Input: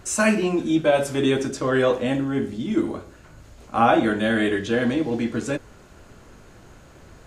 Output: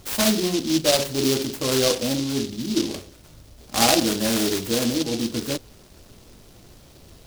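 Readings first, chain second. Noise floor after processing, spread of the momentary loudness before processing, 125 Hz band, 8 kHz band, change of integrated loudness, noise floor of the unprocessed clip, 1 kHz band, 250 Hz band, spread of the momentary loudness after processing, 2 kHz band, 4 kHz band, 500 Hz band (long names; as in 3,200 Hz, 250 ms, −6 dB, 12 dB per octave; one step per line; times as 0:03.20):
−49 dBFS, 9 LU, −1.0 dB, +8.5 dB, 0.0 dB, −48 dBFS, −4.5 dB, −1.5 dB, 9 LU, −5.0 dB, +10.0 dB, −2.5 dB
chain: short delay modulated by noise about 4,200 Hz, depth 0.18 ms
level −1 dB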